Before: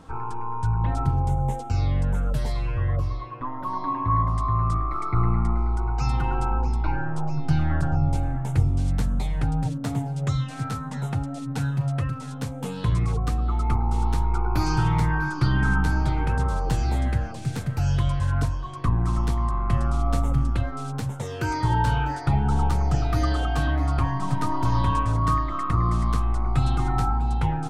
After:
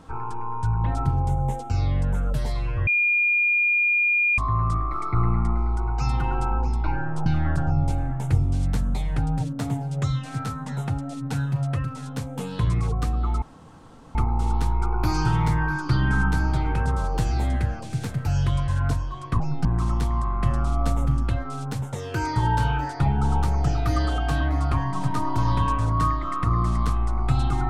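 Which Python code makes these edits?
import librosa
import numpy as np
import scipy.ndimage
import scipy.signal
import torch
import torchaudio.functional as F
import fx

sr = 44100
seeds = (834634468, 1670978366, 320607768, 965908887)

y = fx.edit(x, sr, fx.bleep(start_s=2.87, length_s=1.51, hz=2420.0, db=-17.5),
    fx.move(start_s=7.26, length_s=0.25, to_s=18.92),
    fx.insert_room_tone(at_s=13.67, length_s=0.73), tone=tone)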